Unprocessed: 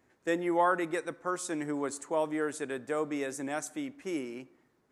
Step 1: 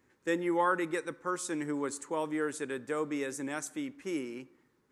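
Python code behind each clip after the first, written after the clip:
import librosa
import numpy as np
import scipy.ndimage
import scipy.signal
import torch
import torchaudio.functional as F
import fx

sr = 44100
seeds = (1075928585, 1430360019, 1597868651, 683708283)

y = fx.peak_eq(x, sr, hz=680.0, db=-14.0, octaves=0.26)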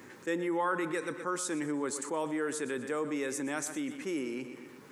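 y = scipy.signal.sosfilt(scipy.signal.butter(2, 130.0, 'highpass', fs=sr, output='sos'), x)
y = fx.echo_feedback(y, sr, ms=122, feedback_pct=42, wet_db=-16)
y = fx.env_flatten(y, sr, amount_pct=50)
y = y * librosa.db_to_amplitude(-3.5)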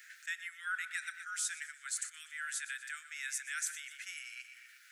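y = scipy.signal.sosfilt(scipy.signal.butter(16, 1400.0, 'highpass', fs=sr, output='sos'), x)
y = y * librosa.db_to_amplitude(1.0)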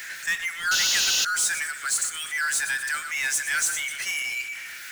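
y = fx.spec_paint(x, sr, seeds[0], shape='noise', start_s=0.71, length_s=0.54, low_hz=2500.0, high_hz=7100.0, level_db=-35.0)
y = fx.noise_reduce_blind(y, sr, reduce_db=8)
y = fx.power_curve(y, sr, exponent=0.5)
y = y * librosa.db_to_amplitude(7.0)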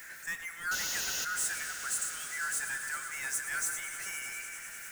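y = fx.peak_eq(x, sr, hz=3500.0, db=-13.5, octaves=1.9)
y = fx.echo_swell(y, sr, ms=100, loudest=5, wet_db=-16)
y = y * librosa.db_to_amplitude(-4.0)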